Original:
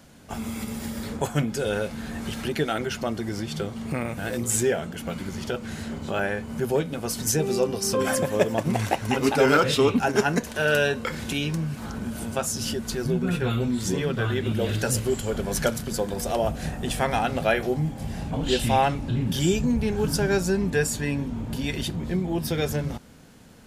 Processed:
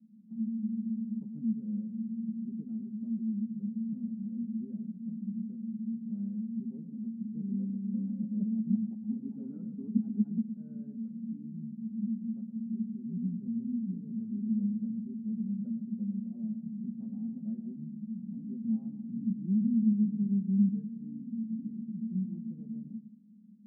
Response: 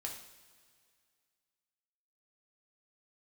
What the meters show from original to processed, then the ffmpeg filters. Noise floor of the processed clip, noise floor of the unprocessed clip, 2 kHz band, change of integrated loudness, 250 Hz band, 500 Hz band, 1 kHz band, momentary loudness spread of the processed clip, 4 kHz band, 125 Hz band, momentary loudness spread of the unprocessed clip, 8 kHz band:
-49 dBFS, -38 dBFS, under -40 dB, -9.0 dB, -3.0 dB, under -35 dB, under -40 dB, 11 LU, under -40 dB, -12.0 dB, 10 LU, under -40 dB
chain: -filter_complex "[0:a]asuperpass=centerf=210:order=4:qfactor=6.3,asplit=2[s0][s1];[1:a]atrim=start_sample=2205,asetrate=52920,aresample=44100,adelay=112[s2];[s1][s2]afir=irnorm=-1:irlink=0,volume=0.422[s3];[s0][s3]amix=inputs=2:normalize=0,volume=1.41"

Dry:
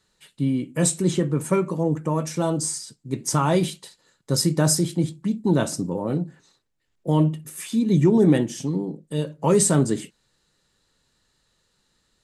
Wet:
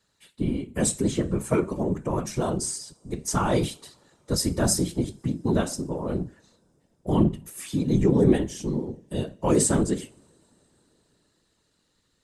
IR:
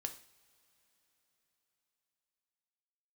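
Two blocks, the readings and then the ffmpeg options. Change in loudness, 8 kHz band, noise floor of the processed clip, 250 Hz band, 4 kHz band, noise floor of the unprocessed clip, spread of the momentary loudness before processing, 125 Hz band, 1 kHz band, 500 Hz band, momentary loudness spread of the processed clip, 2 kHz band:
-3.0 dB, -3.0 dB, -71 dBFS, -3.0 dB, -3.5 dB, -70 dBFS, 11 LU, -4.0 dB, -3.0 dB, -2.5 dB, 11 LU, -2.5 dB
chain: -filter_complex "[0:a]asplit=2[s0][s1];[1:a]atrim=start_sample=2205[s2];[s1][s2]afir=irnorm=-1:irlink=0,volume=0.562[s3];[s0][s3]amix=inputs=2:normalize=0,afftfilt=real='hypot(re,im)*cos(2*PI*random(0))':imag='hypot(re,im)*sin(2*PI*random(1))':win_size=512:overlap=0.75"

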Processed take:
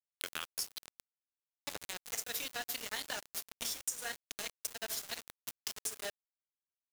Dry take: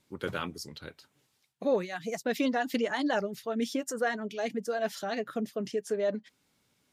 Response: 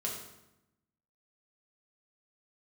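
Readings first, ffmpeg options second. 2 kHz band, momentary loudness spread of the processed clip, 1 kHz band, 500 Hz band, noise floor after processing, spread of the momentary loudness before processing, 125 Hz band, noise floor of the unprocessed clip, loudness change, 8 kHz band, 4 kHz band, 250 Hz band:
-7.5 dB, 7 LU, -13.5 dB, -20.0 dB, under -85 dBFS, 8 LU, -18.0 dB, -74 dBFS, -7.5 dB, +6.0 dB, +1.0 dB, -25.5 dB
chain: -filter_complex "[0:a]aderivative,asplit=2[s0][s1];[s1]adelay=25,volume=0.224[s2];[s0][s2]amix=inputs=2:normalize=0,asplit=2[s3][s4];[1:a]atrim=start_sample=2205,highshelf=f=3200:g=7.5[s5];[s4][s5]afir=irnorm=-1:irlink=0,volume=0.501[s6];[s3][s6]amix=inputs=2:normalize=0,aeval=exprs='val(0)*gte(abs(val(0)),0.0119)':c=same,acompressor=threshold=0.00282:ratio=6,volume=5.62"

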